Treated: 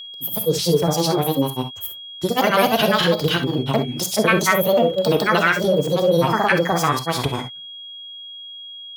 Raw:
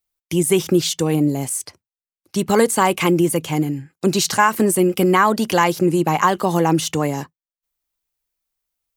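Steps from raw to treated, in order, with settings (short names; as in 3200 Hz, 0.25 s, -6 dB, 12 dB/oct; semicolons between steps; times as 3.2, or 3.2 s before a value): fifteen-band EQ 100 Hz +7 dB, 250 Hz -6 dB, 6300 Hz -11 dB; in parallel at +1 dB: limiter -13.5 dBFS, peak gain reduction 10.5 dB; on the sum: formant shift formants +6 st; grains, spray 0.327 s, pitch spread up and down by 3 st; whine 3300 Hz -29 dBFS; on a send at -7.5 dB: reverb, pre-delay 3 ms; on the sum: gain -3.5 dB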